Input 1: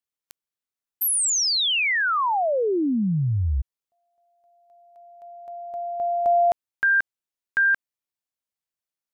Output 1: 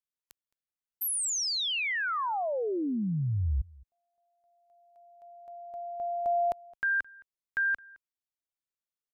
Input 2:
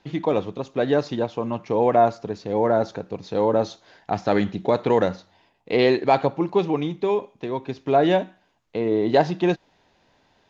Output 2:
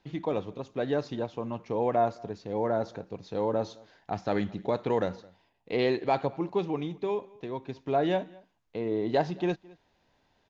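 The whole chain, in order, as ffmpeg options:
-filter_complex "[0:a]lowshelf=f=73:g=7,asplit=2[s0][s1];[s1]adelay=215.7,volume=0.0631,highshelf=f=4000:g=-4.85[s2];[s0][s2]amix=inputs=2:normalize=0,volume=0.376"

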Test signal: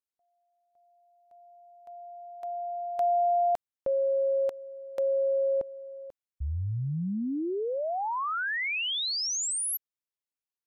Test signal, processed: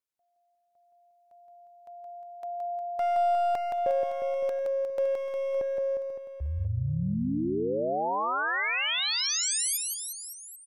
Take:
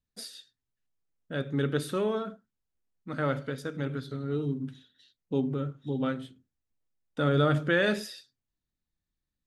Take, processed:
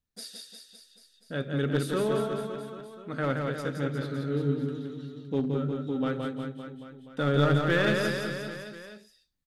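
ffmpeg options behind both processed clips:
-af "aeval=exprs='clip(val(0),-1,0.0596)':c=same,aecho=1:1:170|357|562.7|789|1038:0.631|0.398|0.251|0.158|0.1"

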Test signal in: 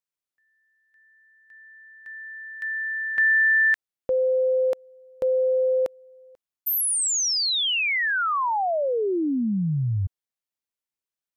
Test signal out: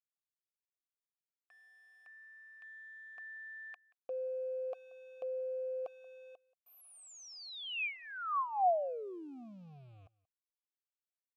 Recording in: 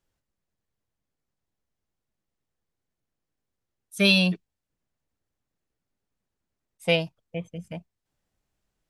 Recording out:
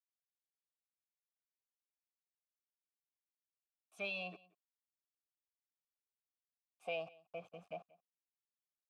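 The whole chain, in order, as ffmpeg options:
-filter_complex "[0:a]acompressor=threshold=0.00891:ratio=2.5:attack=0.14:release=25:knee=6:detection=peak,aeval=exprs='val(0)*gte(abs(val(0)),0.00211)':c=same,asplit=3[s0][s1][s2];[s0]bandpass=f=730:t=q:w=8,volume=1[s3];[s1]bandpass=f=1090:t=q:w=8,volume=0.501[s4];[s2]bandpass=f=2440:t=q:w=8,volume=0.355[s5];[s3][s4][s5]amix=inputs=3:normalize=0,asplit=2[s6][s7];[s7]aecho=0:1:181:0.0708[s8];[s6][s8]amix=inputs=2:normalize=0,volume=3.16"

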